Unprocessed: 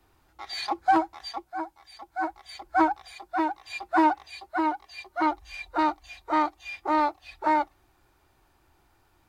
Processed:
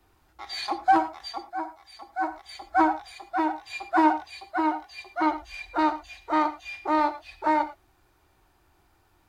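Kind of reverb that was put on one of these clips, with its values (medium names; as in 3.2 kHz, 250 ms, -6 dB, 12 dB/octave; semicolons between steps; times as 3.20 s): gated-style reverb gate 130 ms flat, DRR 10 dB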